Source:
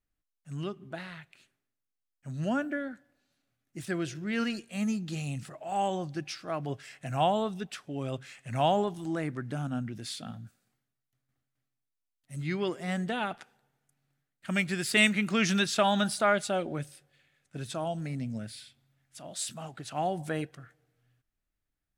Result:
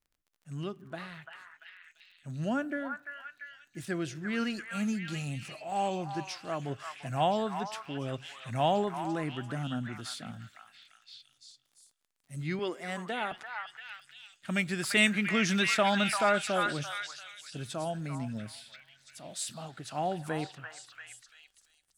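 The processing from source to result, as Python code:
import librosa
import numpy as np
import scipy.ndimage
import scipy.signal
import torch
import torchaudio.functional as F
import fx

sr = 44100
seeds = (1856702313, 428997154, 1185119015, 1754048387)

y = fx.highpass(x, sr, hz=280.0, slope=12, at=(12.59, 13.32))
y = fx.echo_stepped(y, sr, ms=342, hz=1300.0, octaves=0.7, feedback_pct=70, wet_db=-1.5)
y = fx.dmg_crackle(y, sr, seeds[0], per_s=42.0, level_db=-53.0)
y = y * 10.0 ** (-1.5 / 20.0)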